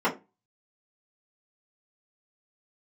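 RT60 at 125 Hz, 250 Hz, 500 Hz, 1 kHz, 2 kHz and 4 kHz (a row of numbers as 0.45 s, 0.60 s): 0.35 s, 0.30 s, 0.25 s, 0.25 s, 0.20 s, 0.15 s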